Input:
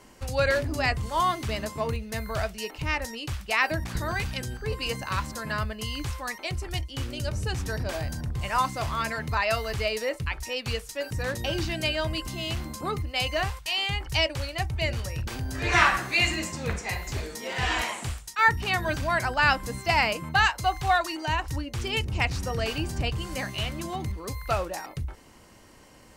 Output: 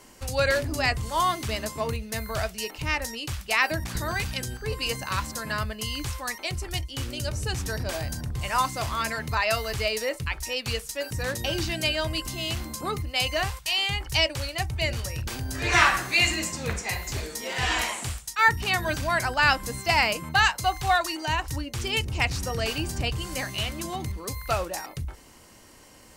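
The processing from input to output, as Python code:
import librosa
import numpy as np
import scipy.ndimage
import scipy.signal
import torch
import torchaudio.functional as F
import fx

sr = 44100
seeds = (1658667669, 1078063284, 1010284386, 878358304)

y = fx.high_shelf(x, sr, hz=4200.0, db=7.0)
y = fx.hum_notches(y, sr, base_hz=50, count=4)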